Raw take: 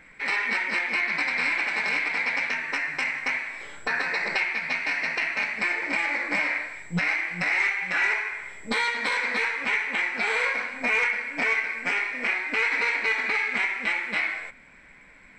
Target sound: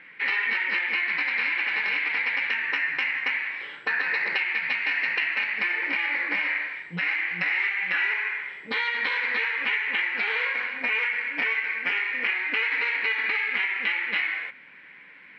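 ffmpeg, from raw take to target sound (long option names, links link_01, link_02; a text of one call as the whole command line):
ffmpeg -i in.wav -af "acompressor=threshold=-26dB:ratio=6,highpass=190,equalizer=frequency=230:width_type=q:width=4:gain=-5,equalizer=frequency=650:width_type=q:width=4:gain=-8,equalizer=frequency=1800:width_type=q:width=4:gain=6,equalizer=frequency=2900:width_type=q:width=4:gain=9,lowpass=frequency=4200:width=0.5412,lowpass=frequency=4200:width=1.3066" out.wav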